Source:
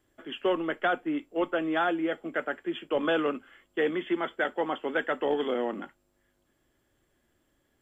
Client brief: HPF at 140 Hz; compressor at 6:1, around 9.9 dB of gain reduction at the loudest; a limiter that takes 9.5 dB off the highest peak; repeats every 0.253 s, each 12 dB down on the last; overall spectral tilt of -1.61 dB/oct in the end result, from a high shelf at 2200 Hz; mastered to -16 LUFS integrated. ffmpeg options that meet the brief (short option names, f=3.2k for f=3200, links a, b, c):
-af "highpass=140,highshelf=f=2.2k:g=7.5,acompressor=threshold=-32dB:ratio=6,alimiter=level_in=5.5dB:limit=-24dB:level=0:latency=1,volume=-5.5dB,aecho=1:1:253|506|759:0.251|0.0628|0.0157,volume=23dB"